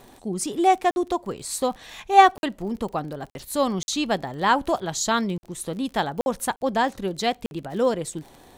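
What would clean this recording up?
de-click; interpolate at 0.91/2.38/3.3/3.83/5.38/6.21/6.56/7.46, 51 ms

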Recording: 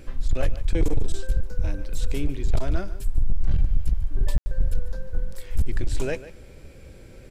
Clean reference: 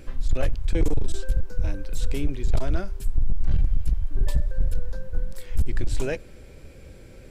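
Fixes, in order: room tone fill 4.38–4.46; inverse comb 0.146 s -15.5 dB

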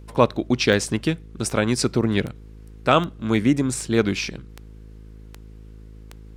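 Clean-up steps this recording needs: de-click; de-hum 53.3 Hz, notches 9

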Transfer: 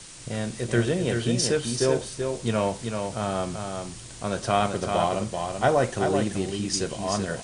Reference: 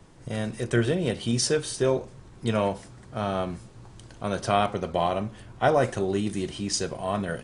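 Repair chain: denoiser 7 dB, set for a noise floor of -40 dBFS; inverse comb 0.384 s -5.5 dB

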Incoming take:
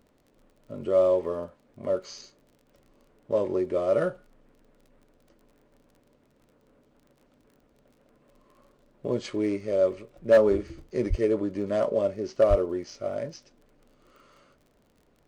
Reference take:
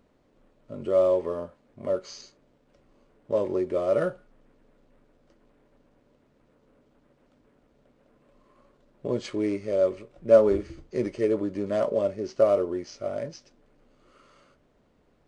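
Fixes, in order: clip repair -12 dBFS; de-click; de-plosive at 11.09/12.49

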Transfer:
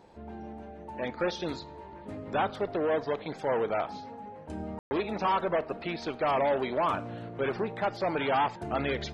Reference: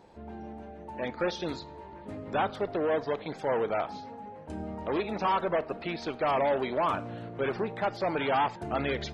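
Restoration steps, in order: room tone fill 4.79–4.91

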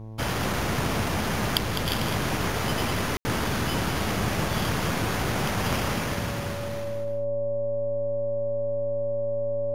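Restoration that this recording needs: de-hum 109.6 Hz, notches 10; notch 570 Hz, Q 30; room tone fill 3.17–3.25; inverse comb 0.205 s -9 dB

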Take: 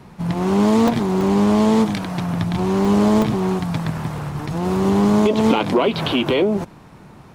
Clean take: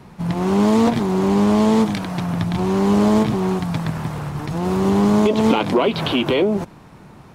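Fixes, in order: interpolate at 0.88/1.21/2.85/3.22, 1.5 ms

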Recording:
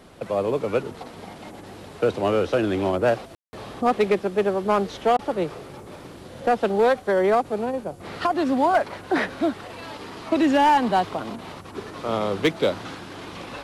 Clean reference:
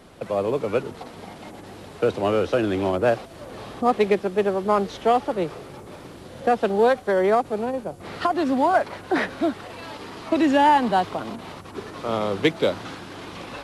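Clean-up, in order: clip repair -12.5 dBFS; room tone fill 3.35–3.53; interpolate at 3.43/5.17, 18 ms

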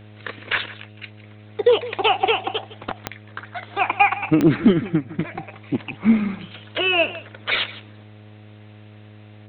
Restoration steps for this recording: de-click; de-hum 105.6 Hz, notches 7; inverse comb 0.16 s -17 dB

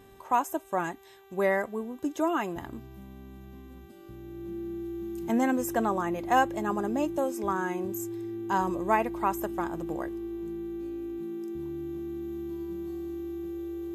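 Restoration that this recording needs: de-hum 390.5 Hz, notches 10; notch 340 Hz, Q 30

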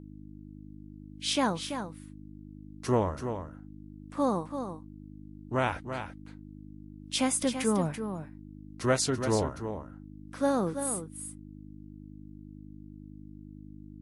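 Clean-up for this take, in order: de-hum 51 Hz, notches 6; inverse comb 0.335 s -8.5 dB

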